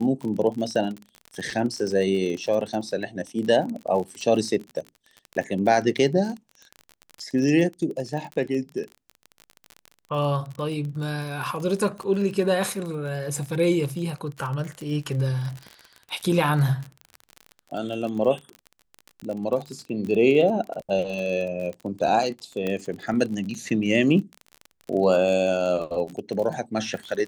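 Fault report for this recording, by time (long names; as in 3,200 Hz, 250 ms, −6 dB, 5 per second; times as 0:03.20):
surface crackle 34 per second −30 dBFS
0:22.67: click −15 dBFS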